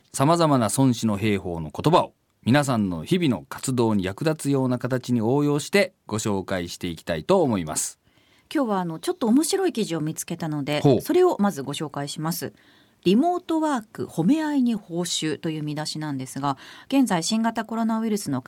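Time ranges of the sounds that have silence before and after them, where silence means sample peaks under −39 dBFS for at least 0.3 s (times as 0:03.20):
0:02.46–0:07.92
0:08.51–0:12.49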